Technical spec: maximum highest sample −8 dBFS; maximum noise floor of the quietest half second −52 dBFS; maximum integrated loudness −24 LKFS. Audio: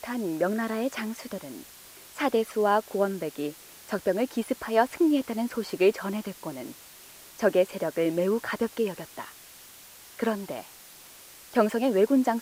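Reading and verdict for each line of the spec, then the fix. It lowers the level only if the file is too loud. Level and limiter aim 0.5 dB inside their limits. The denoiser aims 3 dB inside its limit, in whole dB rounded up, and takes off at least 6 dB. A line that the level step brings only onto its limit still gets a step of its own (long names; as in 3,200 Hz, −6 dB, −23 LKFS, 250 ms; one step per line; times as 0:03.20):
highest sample −8.5 dBFS: in spec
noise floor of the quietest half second −49 dBFS: out of spec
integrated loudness −27.5 LKFS: in spec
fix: broadband denoise 6 dB, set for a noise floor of −49 dBFS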